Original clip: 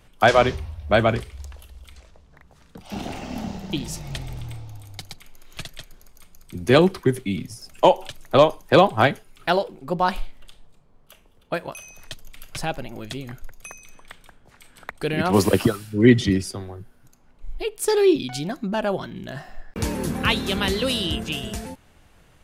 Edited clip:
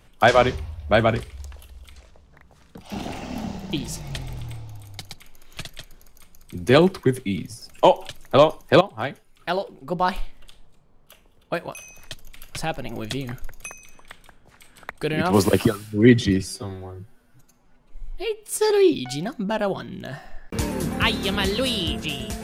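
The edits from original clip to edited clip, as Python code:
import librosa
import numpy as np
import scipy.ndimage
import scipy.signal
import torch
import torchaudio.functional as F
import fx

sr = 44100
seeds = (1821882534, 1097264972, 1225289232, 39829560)

y = fx.edit(x, sr, fx.fade_in_from(start_s=8.81, length_s=1.37, floor_db=-15.5),
    fx.clip_gain(start_s=12.85, length_s=0.84, db=4.0),
    fx.stretch_span(start_s=16.41, length_s=1.53, factor=1.5), tone=tone)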